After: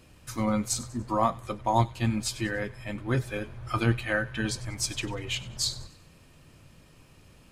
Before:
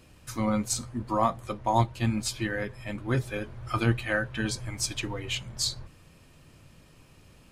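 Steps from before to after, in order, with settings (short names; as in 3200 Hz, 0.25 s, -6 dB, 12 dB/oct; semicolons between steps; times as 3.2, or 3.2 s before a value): thin delay 96 ms, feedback 42%, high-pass 1700 Hz, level -17 dB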